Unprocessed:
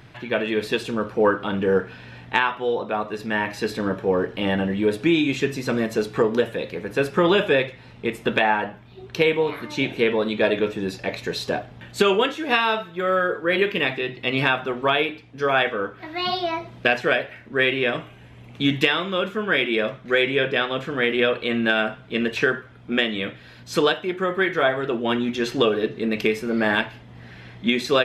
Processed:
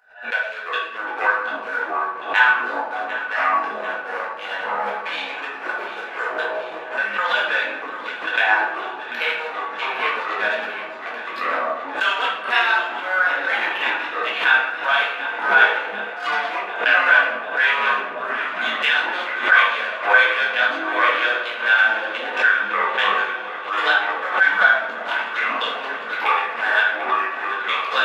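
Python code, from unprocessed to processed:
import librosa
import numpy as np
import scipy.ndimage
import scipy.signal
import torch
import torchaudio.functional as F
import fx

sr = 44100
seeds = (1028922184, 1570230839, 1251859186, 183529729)

y = fx.wiener(x, sr, points=41)
y = scipy.signal.sosfilt(scipy.signal.cheby2(4, 40, 350.0, 'highpass', fs=sr, output='sos'), y)
y = fx.peak_eq(y, sr, hz=1500.0, db=14.0, octaves=0.2)
y = fx.echo_pitch(y, sr, ms=231, semitones=-5, count=3, db_per_echo=-6.0)
y = fx.echo_alternate(y, sr, ms=371, hz=950.0, feedback_pct=86, wet_db=-11)
y = fx.room_shoebox(y, sr, seeds[0], volume_m3=270.0, walls='mixed', distance_m=1.9)
y = fx.pre_swell(y, sr, db_per_s=130.0)
y = y * 10.0 ** (-3.0 / 20.0)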